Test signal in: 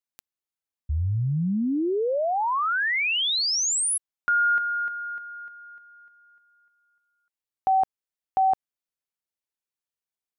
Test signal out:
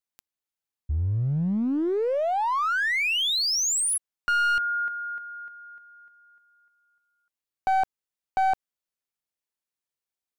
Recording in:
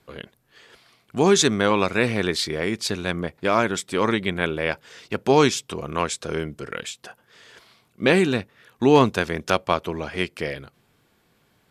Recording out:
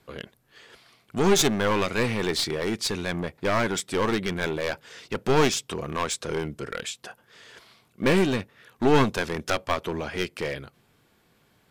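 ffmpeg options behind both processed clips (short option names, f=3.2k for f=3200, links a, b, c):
-af "aeval=exprs='clip(val(0),-1,0.0708)':c=same"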